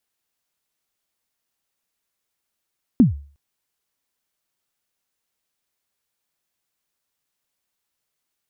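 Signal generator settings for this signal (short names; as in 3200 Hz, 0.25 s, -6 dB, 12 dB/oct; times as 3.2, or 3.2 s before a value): kick drum length 0.36 s, from 280 Hz, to 71 Hz, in 0.136 s, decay 0.41 s, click off, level -5.5 dB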